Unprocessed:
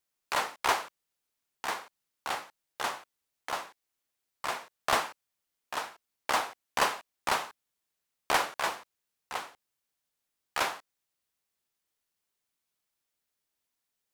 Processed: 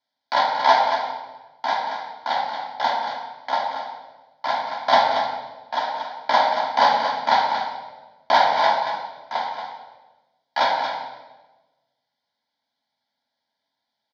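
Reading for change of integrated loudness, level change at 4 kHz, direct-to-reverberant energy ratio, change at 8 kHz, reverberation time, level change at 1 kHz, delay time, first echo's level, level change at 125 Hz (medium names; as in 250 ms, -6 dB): +10.5 dB, +9.0 dB, -3.5 dB, no reading, 1.2 s, +14.0 dB, 230 ms, -7.0 dB, no reading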